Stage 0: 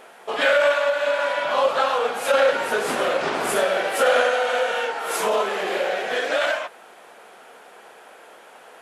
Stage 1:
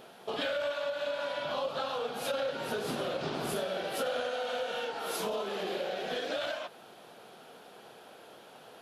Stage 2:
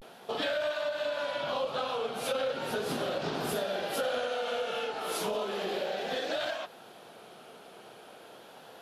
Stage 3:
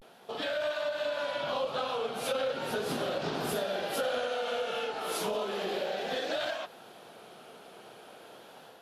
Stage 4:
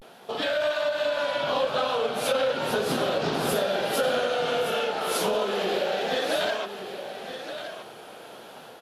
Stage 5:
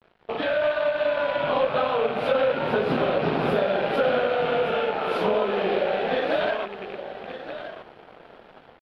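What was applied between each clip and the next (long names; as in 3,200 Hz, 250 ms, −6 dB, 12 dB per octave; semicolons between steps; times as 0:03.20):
octave-band graphic EQ 125/500/1,000/2,000/4,000/8,000 Hz +10/−4/−6/−11/+4/−10 dB; downward compressor 3 to 1, threshold −33 dBFS, peak gain reduction 10.5 dB
pitch vibrato 0.36 Hz 69 cents; level +1.5 dB
automatic gain control gain up to 5 dB; level −5 dB
single-tap delay 1,171 ms −10 dB; level +6.5 dB
loose part that buzzes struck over −44 dBFS, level −26 dBFS; dead-zone distortion −45.5 dBFS; high-frequency loss of the air 410 metres; level +5 dB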